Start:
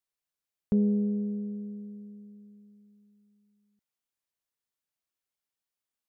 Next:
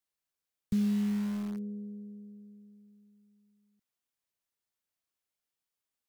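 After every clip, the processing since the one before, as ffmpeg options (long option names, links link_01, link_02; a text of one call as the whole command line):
ffmpeg -i in.wav -filter_complex "[0:a]acrossover=split=190|320[link_01][link_02][link_03];[link_02]alimiter=level_in=7.5dB:limit=-24dB:level=0:latency=1,volume=-7.5dB[link_04];[link_03]aeval=exprs='(mod(200*val(0)+1,2)-1)/200':channel_layout=same[link_05];[link_01][link_04][link_05]amix=inputs=3:normalize=0" out.wav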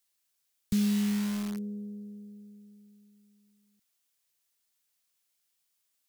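ffmpeg -i in.wav -af "highshelf=frequency=2100:gain=11.5,volume=1.5dB" out.wav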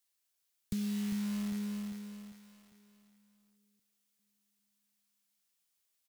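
ffmpeg -i in.wav -filter_complex "[0:a]asplit=2[link_01][link_02];[link_02]aecho=0:1:399|798|1197|1596|1995:0.447|0.197|0.0865|0.0381|0.0167[link_03];[link_01][link_03]amix=inputs=2:normalize=0,acompressor=threshold=-29dB:ratio=6,volume=-3.5dB" out.wav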